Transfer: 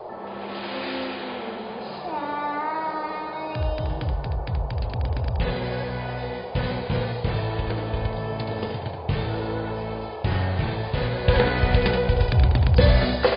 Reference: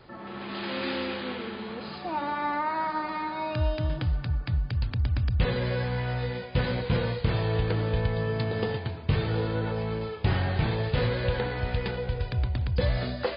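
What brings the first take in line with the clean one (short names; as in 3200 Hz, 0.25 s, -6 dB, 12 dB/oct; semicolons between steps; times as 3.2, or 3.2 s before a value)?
noise print and reduce 6 dB; inverse comb 76 ms -7 dB; gain 0 dB, from 11.28 s -9 dB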